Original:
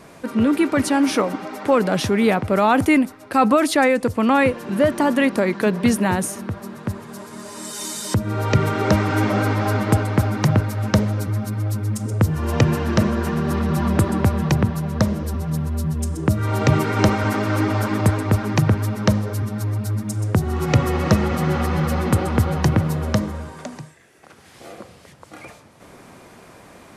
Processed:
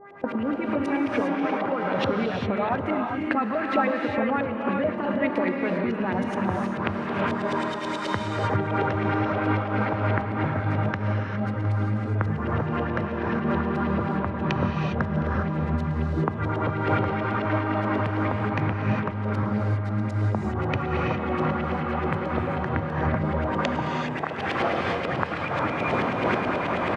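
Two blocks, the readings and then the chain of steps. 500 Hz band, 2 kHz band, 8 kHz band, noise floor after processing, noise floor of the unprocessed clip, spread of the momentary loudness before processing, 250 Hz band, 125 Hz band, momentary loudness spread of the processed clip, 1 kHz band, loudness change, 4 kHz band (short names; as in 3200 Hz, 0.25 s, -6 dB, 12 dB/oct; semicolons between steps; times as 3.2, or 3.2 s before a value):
-4.5 dB, -2.5 dB, under -20 dB, -30 dBFS, -46 dBFS, 9 LU, -6.0 dB, -6.5 dB, 3 LU, -2.5 dB, -6.0 dB, -7.0 dB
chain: recorder AGC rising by 54 dB/s; gate -23 dBFS, range -12 dB; HPF 79 Hz; compressor 4:1, threshold -23 dBFS, peak gain reduction 13 dB; buzz 400 Hz, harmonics 5, -45 dBFS -3 dB/oct; LFO low-pass saw up 9.3 Hz 510–3300 Hz; on a send: echo 0.713 s -21.5 dB; on the sum: non-linear reverb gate 0.43 s rising, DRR 0.5 dB; noise-modulated level, depth 65%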